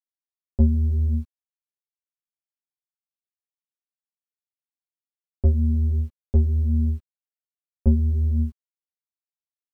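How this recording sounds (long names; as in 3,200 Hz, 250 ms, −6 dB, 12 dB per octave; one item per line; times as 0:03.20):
a quantiser's noise floor 10 bits, dither none
a shimmering, thickened sound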